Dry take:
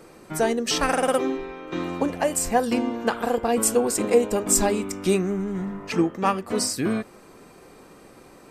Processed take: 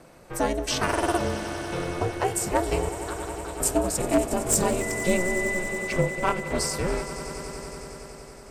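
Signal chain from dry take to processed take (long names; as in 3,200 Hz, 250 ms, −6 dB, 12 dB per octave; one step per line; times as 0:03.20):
wavefolder on the positive side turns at −11 dBFS
0:02.89–0:03.60: pair of resonant band-passes 2,200 Hz, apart 1.5 octaves
ring modulation 180 Hz
0:04.80–0:05.57: steady tone 2,000 Hz −32 dBFS
on a send: echo that builds up and dies away 93 ms, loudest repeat 5, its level −16 dB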